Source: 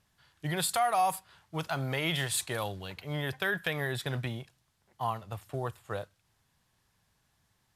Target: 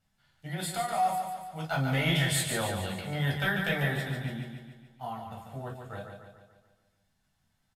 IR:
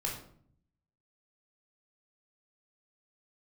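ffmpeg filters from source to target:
-filter_complex "[0:a]asettb=1/sr,asplit=3[a][b][c];[a]atrim=end=1.704[d];[b]atrim=start=1.7:end=3.94,asetpts=PTS-STARTPTS,afade=t=in:d=0.004:c=qsin,afade=t=out:st=2.236:d=0.004:c=qsin,acontrast=83[e];[c]atrim=start=3.936[f];[d][e]acrossfade=d=0.004:c1=hsin:c2=qsin[g];[g][f]acrossfade=d=0.004:c1=qsin:c2=hsin,aecho=1:1:144|288|432|576|720|864|1008:0.501|0.266|0.141|0.0746|0.0395|0.021|0.0111[h];[1:a]atrim=start_sample=2205,atrim=end_sample=4410,asetrate=70560,aresample=44100[i];[h][i]afir=irnorm=-1:irlink=0,volume=-4dB"

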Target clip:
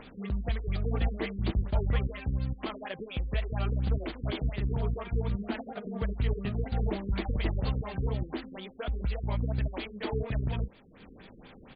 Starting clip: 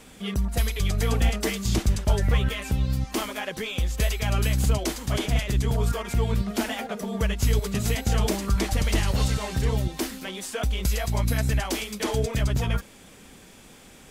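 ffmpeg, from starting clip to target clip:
-af "atempo=1.2,acompressor=mode=upward:threshold=-35dB:ratio=2.5,afftfilt=real='re*lt(b*sr/1024,490*pow(4900/490,0.5+0.5*sin(2*PI*4.2*pts/sr)))':imag='im*lt(b*sr/1024,490*pow(4900/490,0.5+0.5*sin(2*PI*4.2*pts/sr)))':win_size=1024:overlap=0.75,volume=-6dB"

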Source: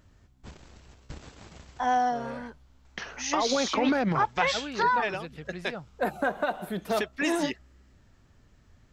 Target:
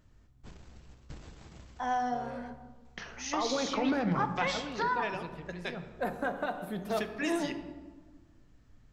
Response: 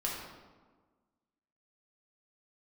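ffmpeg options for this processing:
-filter_complex "[0:a]asplit=2[a][b];[1:a]atrim=start_sample=2205,lowshelf=f=310:g=9.5[c];[b][c]afir=irnorm=-1:irlink=0,volume=-9.5dB[d];[a][d]amix=inputs=2:normalize=0,volume=-8.5dB"

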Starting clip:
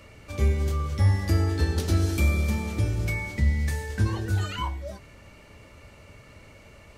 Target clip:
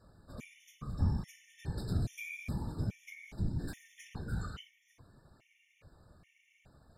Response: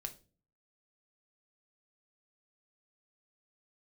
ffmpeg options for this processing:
-filter_complex "[0:a]asplit=3[a][b][c];[a]afade=t=out:st=3.58:d=0.02[d];[b]aeval=exprs='0.251*(cos(1*acos(clip(val(0)/0.251,-1,1)))-cos(1*PI/2))+0.0794*(cos(7*acos(clip(val(0)/0.251,-1,1)))-cos(7*PI/2))':c=same,afade=t=in:st=3.58:d=0.02,afade=t=out:st=4.13:d=0.02[e];[c]afade=t=in:st=4.13:d=0.02[f];[d][e][f]amix=inputs=3:normalize=0[g];[1:a]atrim=start_sample=2205,asetrate=88200,aresample=44100[h];[g][h]afir=irnorm=-1:irlink=0,afftfilt=real='hypot(re,im)*cos(2*PI*random(0))':imag='hypot(re,im)*sin(2*PI*random(1))':win_size=512:overlap=0.75,afftfilt=real='re*gt(sin(2*PI*1.2*pts/sr)*(1-2*mod(floor(b*sr/1024/1800),2)),0)':imag='im*gt(sin(2*PI*1.2*pts/sr)*(1-2*mod(floor(b*sr/1024/1800),2)),0)':win_size=1024:overlap=0.75,volume=2dB"

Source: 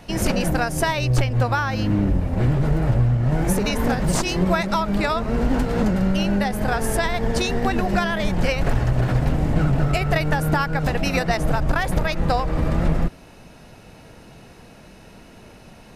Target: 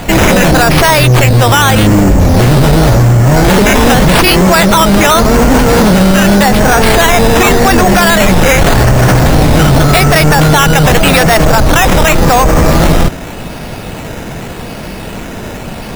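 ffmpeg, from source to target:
-af "apsyclip=25dB,acrusher=samples=8:mix=1:aa=0.000001:lfo=1:lforange=4.8:lforate=0.86,volume=-2.5dB"

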